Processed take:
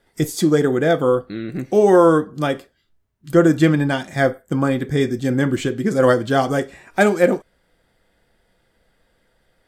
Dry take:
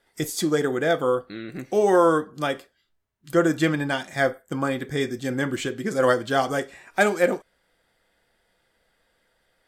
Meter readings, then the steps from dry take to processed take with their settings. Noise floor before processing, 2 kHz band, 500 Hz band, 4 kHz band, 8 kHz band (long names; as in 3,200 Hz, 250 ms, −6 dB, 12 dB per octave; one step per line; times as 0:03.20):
−70 dBFS, +2.0 dB, +5.5 dB, +1.5 dB, +1.5 dB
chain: low-shelf EQ 410 Hz +9.5 dB
level +1.5 dB